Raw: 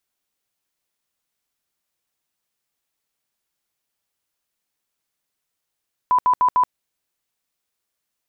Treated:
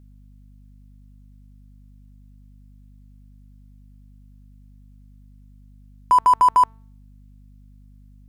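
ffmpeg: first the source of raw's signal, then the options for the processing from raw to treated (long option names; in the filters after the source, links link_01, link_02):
-f lavfi -i "aevalsrc='0.237*sin(2*PI*998*mod(t,0.15))*lt(mod(t,0.15),76/998)':duration=0.6:sample_rate=44100"
-filter_complex "[0:a]bandreject=frequency=223.3:width_type=h:width=4,bandreject=frequency=446.6:width_type=h:width=4,bandreject=frequency=669.9:width_type=h:width=4,bandreject=frequency=893.2:width_type=h:width=4,bandreject=frequency=1116.5:width_type=h:width=4,bandreject=frequency=1339.8:width_type=h:width=4,bandreject=frequency=1563.1:width_type=h:width=4,bandreject=frequency=1786.4:width_type=h:width=4,bandreject=frequency=2009.7:width_type=h:width=4,bandreject=frequency=2233:width_type=h:width=4,bandreject=frequency=2456.3:width_type=h:width=4,bandreject=frequency=2679.6:width_type=h:width=4,bandreject=frequency=2902.9:width_type=h:width=4,bandreject=frequency=3126.2:width_type=h:width=4,bandreject=frequency=3349.5:width_type=h:width=4,bandreject=frequency=3572.8:width_type=h:width=4,bandreject=frequency=3796.1:width_type=h:width=4,bandreject=frequency=4019.4:width_type=h:width=4,bandreject=frequency=4242.7:width_type=h:width=4,bandreject=frequency=4466:width_type=h:width=4,bandreject=frequency=4689.3:width_type=h:width=4,bandreject=frequency=4912.6:width_type=h:width=4,bandreject=frequency=5135.9:width_type=h:width=4,bandreject=frequency=5359.2:width_type=h:width=4,bandreject=frequency=5582.5:width_type=h:width=4,bandreject=frequency=5805.8:width_type=h:width=4,bandreject=frequency=6029.1:width_type=h:width=4,bandreject=frequency=6252.4:width_type=h:width=4,bandreject=frequency=6475.7:width_type=h:width=4,bandreject=frequency=6699:width_type=h:width=4,bandreject=frequency=6922.3:width_type=h:width=4,bandreject=frequency=7145.6:width_type=h:width=4,bandreject=frequency=7368.9:width_type=h:width=4,bandreject=frequency=7592.2:width_type=h:width=4,bandreject=frequency=7815.5:width_type=h:width=4,bandreject=frequency=8038.8:width_type=h:width=4,bandreject=frequency=8262.1:width_type=h:width=4,bandreject=frequency=8485.4:width_type=h:width=4,asplit=2[link_01][link_02];[link_02]acrusher=bits=3:mix=0:aa=0.5,volume=-9dB[link_03];[link_01][link_03]amix=inputs=2:normalize=0,aeval=exprs='val(0)+0.00447*(sin(2*PI*50*n/s)+sin(2*PI*2*50*n/s)/2+sin(2*PI*3*50*n/s)/3+sin(2*PI*4*50*n/s)/4+sin(2*PI*5*50*n/s)/5)':channel_layout=same"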